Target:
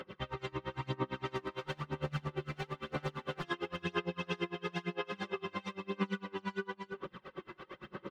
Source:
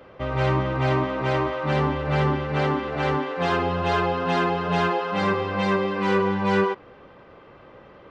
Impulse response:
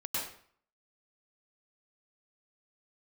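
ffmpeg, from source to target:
-filter_complex "[0:a]highpass=f=220:p=1,equalizer=f=650:t=o:w=0.99:g=-12,bandreject=f=2400:w=22,aecho=1:1:5.4:0.56,acompressor=threshold=0.00891:ratio=5,asettb=1/sr,asplit=3[s0][s1][s2];[s0]atrim=end=1.354[s3];[s1]atrim=start=1.35:end=3.44,asetpts=PTS-STARTPTS,afade=t=in:d=0.004:c=qsin,afade=t=out:st=2.086:d=0.004:c=qsin,asoftclip=type=hard:threshold=0.0112[s4];[s2]atrim=start=3.436[s5];[s3][s4]acrossfade=d=0.004:c1=hsin:c2=qsin[s6];[s6][s5]acrossfade=d=0.004:c1=qsin:c2=hsin,aphaser=in_gain=1:out_gain=1:delay=3:decay=0.53:speed=1:type=sinusoidal,aecho=1:1:326:0.473,aeval=exprs='val(0)*pow(10,-29*(0.5-0.5*cos(2*PI*8.8*n/s))/20)':c=same,volume=2.11"

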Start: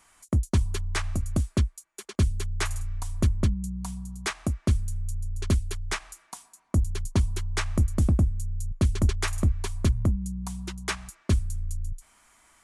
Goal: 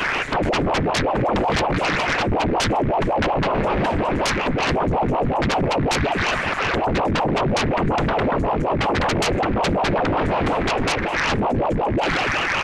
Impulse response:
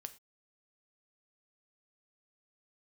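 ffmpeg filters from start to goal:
-filter_complex "[0:a]aeval=exprs='val(0)+0.5*0.0266*sgn(val(0))':c=same,lowpass=f=1900:t=q:w=4.1,equalizer=f=68:t=o:w=0.46:g=-13.5,afftfilt=real='hypot(re,im)*cos(2*PI*random(0))':imag='hypot(re,im)*sin(2*PI*random(1))':win_size=512:overlap=0.75,acrossover=split=330[s0][s1];[s0]aecho=1:1:130|247|352.3|447.1|532.4:0.631|0.398|0.251|0.158|0.1[s2];[s1]alimiter=level_in=1.12:limit=0.0631:level=0:latency=1:release=406,volume=0.891[s3];[s2][s3]amix=inputs=2:normalize=0,aeval=exprs='0.2*sin(PI/2*10*val(0)/0.2)':c=same,aeval=exprs='val(0)*sin(2*PI*450*n/s+450*0.85/5.4*sin(2*PI*5.4*n/s))':c=same"

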